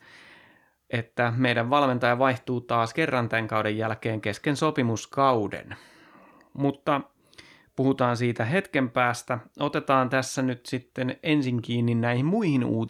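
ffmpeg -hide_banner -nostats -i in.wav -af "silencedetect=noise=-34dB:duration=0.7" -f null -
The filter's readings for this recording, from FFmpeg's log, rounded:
silence_start: 0.00
silence_end: 0.91 | silence_duration: 0.91
silence_start: 5.74
silence_end: 6.56 | silence_duration: 0.81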